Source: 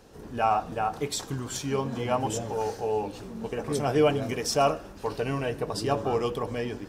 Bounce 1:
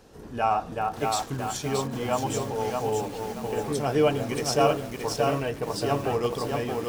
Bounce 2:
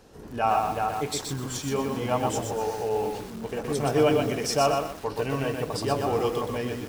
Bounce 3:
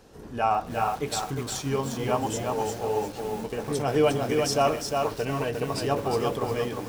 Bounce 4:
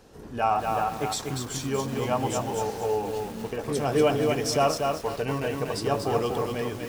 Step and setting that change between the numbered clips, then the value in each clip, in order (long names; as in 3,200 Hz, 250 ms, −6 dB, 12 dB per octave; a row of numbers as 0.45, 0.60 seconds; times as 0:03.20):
feedback echo at a low word length, delay time: 625, 123, 355, 239 milliseconds